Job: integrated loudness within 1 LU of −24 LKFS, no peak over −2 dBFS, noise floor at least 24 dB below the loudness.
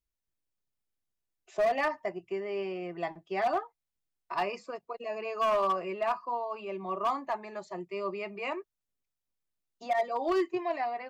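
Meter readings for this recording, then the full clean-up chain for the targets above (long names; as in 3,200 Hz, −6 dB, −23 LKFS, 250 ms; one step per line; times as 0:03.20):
share of clipped samples 1.1%; peaks flattened at −22.5 dBFS; integrated loudness −32.5 LKFS; sample peak −22.5 dBFS; target loudness −24.0 LKFS
→ clipped peaks rebuilt −22.5 dBFS
level +8.5 dB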